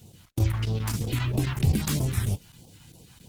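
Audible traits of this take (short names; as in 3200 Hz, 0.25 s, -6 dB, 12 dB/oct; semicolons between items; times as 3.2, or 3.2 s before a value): chopped level 7.5 Hz, depth 65%, duty 90%; a quantiser's noise floor 10-bit, dither none; phasing stages 2, 3.1 Hz, lowest notch 420–1600 Hz; Opus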